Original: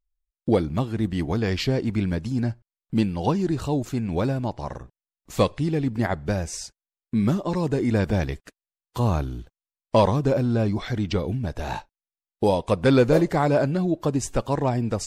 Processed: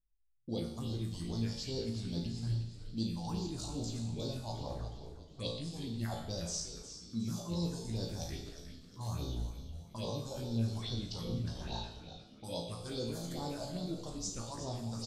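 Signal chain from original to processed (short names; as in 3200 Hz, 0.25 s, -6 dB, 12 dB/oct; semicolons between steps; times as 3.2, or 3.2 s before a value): low-pass opened by the level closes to 660 Hz, open at -19.5 dBFS; resonant high shelf 3000 Hz +13.5 dB, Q 1.5; reverse; compressor 6:1, threshold -34 dBFS, peak gain reduction 20 dB; reverse; resonator 57 Hz, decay 0.5 s, harmonics all, mix 90%; phaser stages 4, 2.4 Hz, lowest notch 310–2200 Hz; on a send: frequency-shifting echo 0.361 s, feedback 45%, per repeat -140 Hz, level -10.5 dB; on the sum: Schroeder reverb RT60 0.78 s, combs from 27 ms, DRR 5.5 dB; gain +6 dB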